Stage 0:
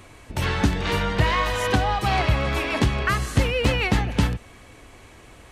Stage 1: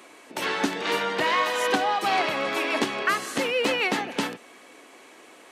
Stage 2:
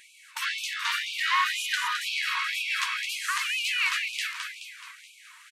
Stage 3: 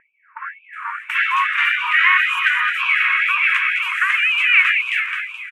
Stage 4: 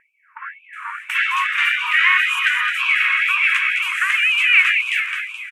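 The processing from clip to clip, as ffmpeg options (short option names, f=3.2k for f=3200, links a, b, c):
-af "highpass=f=260:w=0.5412,highpass=f=260:w=1.3066"
-filter_complex "[0:a]asplit=8[a][b][c][d][e][f][g][h];[b]adelay=213,afreqshift=-58,volume=-6dB[i];[c]adelay=426,afreqshift=-116,volume=-11dB[j];[d]adelay=639,afreqshift=-174,volume=-16.1dB[k];[e]adelay=852,afreqshift=-232,volume=-21.1dB[l];[f]adelay=1065,afreqshift=-290,volume=-26.1dB[m];[g]adelay=1278,afreqshift=-348,volume=-31.2dB[n];[h]adelay=1491,afreqshift=-406,volume=-36.2dB[o];[a][i][j][k][l][m][n][o]amix=inputs=8:normalize=0,afftfilt=real='re*gte(b*sr/1024,900*pow(2300/900,0.5+0.5*sin(2*PI*2*pts/sr)))':imag='im*gte(b*sr/1024,900*pow(2300/900,0.5+0.5*sin(2*PI*2*pts/sr)))':win_size=1024:overlap=0.75"
-filter_complex "[0:a]firequalizer=gain_entry='entry(780,0);entry(1300,8);entry(2400,9);entry(4300,-23);entry(7700,-15)':delay=0.05:min_phase=1,acrossover=split=1200[a][b];[b]adelay=730[c];[a][c]amix=inputs=2:normalize=0,volume=6.5dB"
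-af "equalizer=f=8.8k:w=0.31:g=13,volume=-5dB"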